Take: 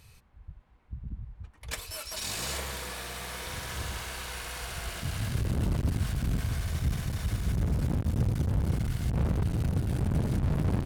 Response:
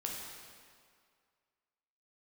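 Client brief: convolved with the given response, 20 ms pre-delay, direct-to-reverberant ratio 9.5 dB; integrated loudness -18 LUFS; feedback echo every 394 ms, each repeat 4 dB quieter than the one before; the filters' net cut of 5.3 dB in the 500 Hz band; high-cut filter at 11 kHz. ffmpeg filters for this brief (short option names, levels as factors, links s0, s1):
-filter_complex "[0:a]lowpass=11000,equalizer=f=500:t=o:g=-7,aecho=1:1:394|788|1182|1576|1970|2364|2758|3152|3546:0.631|0.398|0.25|0.158|0.0994|0.0626|0.0394|0.0249|0.0157,asplit=2[s0][s1];[1:a]atrim=start_sample=2205,adelay=20[s2];[s1][s2]afir=irnorm=-1:irlink=0,volume=0.282[s3];[s0][s3]amix=inputs=2:normalize=0,volume=3.76"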